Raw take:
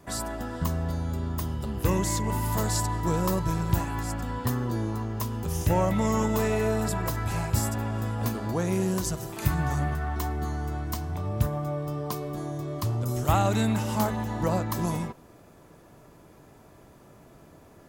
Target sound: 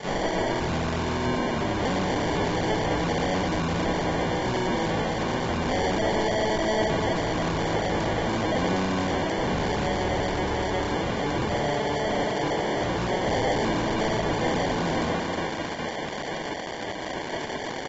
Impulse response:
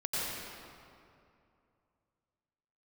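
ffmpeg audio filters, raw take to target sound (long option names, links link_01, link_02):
-filter_complex "[0:a]firequalizer=gain_entry='entry(110,0);entry(170,8);entry(1500,12);entry(7300,-14);entry(11000,-8)':delay=0.05:min_phase=1,aecho=1:1:84.55|128.3:0.708|0.501,asplit=2[link_01][link_02];[1:a]atrim=start_sample=2205[link_03];[link_02][link_03]afir=irnorm=-1:irlink=0,volume=-18.5dB[link_04];[link_01][link_04]amix=inputs=2:normalize=0,asplit=4[link_05][link_06][link_07][link_08];[link_06]asetrate=22050,aresample=44100,atempo=2,volume=-3dB[link_09];[link_07]asetrate=58866,aresample=44100,atempo=0.749154,volume=-8dB[link_10];[link_08]asetrate=66075,aresample=44100,atempo=0.66742,volume=-1dB[link_11];[link_05][link_09][link_10][link_11]amix=inputs=4:normalize=0,equalizer=frequency=6200:width=0.95:gain=14,asplit=2[link_12][link_13];[link_13]adelay=288,lowpass=frequency=3700:poles=1,volume=-19.5dB,asplit=2[link_14][link_15];[link_15]adelay=288,lowpass=frequency=3700:poles=1,volume=0.36,asplit=2[link_16][link_17];[link_17]adelay=288,lowpass=frequency=3700:poles=1,volume=0.36[link_18];[link_14][link_16][link_18]amix=inputs=3:normalize=0[link_19];[link_12][link_19]amix=inputs=2:normalize=0,acrusher=samples=34:mix=1:aa=0.000001,asoftclip=type=hard:threshold=-14.5dB,asplit=2[link_20][link_21];[link_21]highpass=frequency=720:poles=1,volume=16dB,asoftclip=type=tanh:threshold=-14.5dB[link_22];[link_20][link_22]amix=inputs=2:normalize=0,lowpass=frequency=6700:poles=1,volume=-6dB,alimiter=limit=-21.5dB:level=0:latency=1:release=135" -ar 44100 -c:a aac -b:a 24k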